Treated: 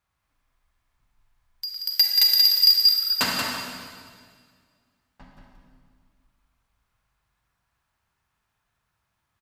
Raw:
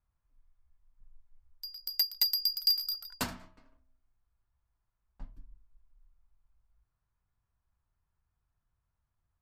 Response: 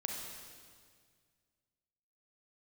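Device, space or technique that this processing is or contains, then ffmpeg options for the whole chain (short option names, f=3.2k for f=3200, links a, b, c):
PA in a hall: -filter_complex "[0:a]highpass=f=170:p=1,equalizer=f=2.5k:t=o:w=2.4:g=7.5,aecho=1:1:181:0.562[a];[1:a]atrim=start_sample=2205[b];[a][b]afir=irnorm=-1:irlink=0,volume=7dB"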